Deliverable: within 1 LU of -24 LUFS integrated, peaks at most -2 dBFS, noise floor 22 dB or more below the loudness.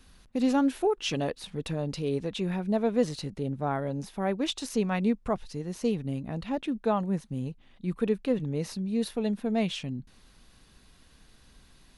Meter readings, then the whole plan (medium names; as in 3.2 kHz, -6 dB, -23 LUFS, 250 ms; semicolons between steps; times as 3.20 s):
loudness -30.0 LUFS; peak level -13.0 dBFS; loudness target -24.0 LUFS
-> trim +6 dB